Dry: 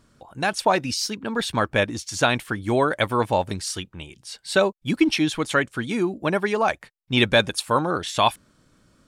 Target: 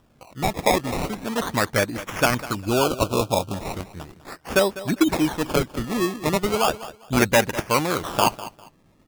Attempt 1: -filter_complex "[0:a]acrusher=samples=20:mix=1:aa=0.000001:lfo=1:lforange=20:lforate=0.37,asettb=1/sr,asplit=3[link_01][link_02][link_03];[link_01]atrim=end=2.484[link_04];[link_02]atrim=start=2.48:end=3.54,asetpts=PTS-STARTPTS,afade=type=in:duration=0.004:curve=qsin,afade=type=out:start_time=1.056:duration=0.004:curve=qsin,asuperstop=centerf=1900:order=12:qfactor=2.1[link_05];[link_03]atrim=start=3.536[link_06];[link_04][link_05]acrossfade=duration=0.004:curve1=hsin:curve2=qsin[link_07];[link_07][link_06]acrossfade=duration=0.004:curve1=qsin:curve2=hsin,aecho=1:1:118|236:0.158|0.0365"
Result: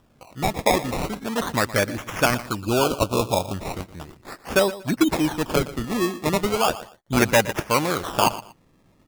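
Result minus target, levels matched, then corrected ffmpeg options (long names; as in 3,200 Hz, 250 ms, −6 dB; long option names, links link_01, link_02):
echo 82 ms early
-filter_complex "[0:a]acrusher=samples=20:mix=1:aa=0.000001:lfo=1:lforange=20:lforate=0.37,asettb=1/sr,asplit=3[link_01][link_02][link_03];[link_01]atrim=end=2.484[link_04];[link_02]atrim=start=2.48:end=3.54,asetpts=PTS-STARTPTS,afade=type=in:duration=0.004:curve=qsin,afade=type=out:start_time=1.056:duration=0.004:curve=qsin,asuperstop=centerf=1900:order=12:qfactor=2.1[link_05];[link_03]atrim=start=3.536[link_06];[link_04][link_05]acrossfade=duration=0.004:curve1=hsin:curve2=qsin[link_07];[link_07][link_06]acrossfade=duration=0.004:curve1=qsin:curve2=hsin,aecho=1:1:200|400:0.158|0.0365"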